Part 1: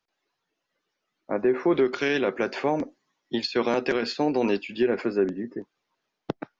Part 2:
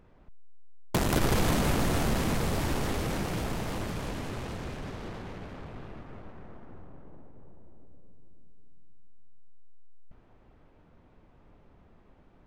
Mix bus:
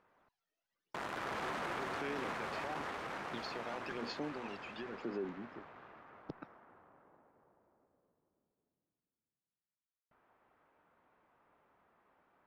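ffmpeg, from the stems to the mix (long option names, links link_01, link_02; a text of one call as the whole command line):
ffmpeg -i stem1.wav -i stem2.wav -filter_complex "[0:a]acompressor=threshold=-27dB:ratio=6,aphaser=in_gain=1:out_gain=1:delay=1.6:decay=0.61:speed=0.97:type=sinusoidal,volume=-13.5dB[link_01];[1:a]bandpass=frequency=1300:width_type=q:width=1.1:csg=0,volume=-2.5dB[link_02];[link_01][link_02]amix=inputs=2:normalize=0,alimiter=level_in=6.5dB:limit=-24dB:level=0:latency=1:release=15,volume=-6.5dB" out.wav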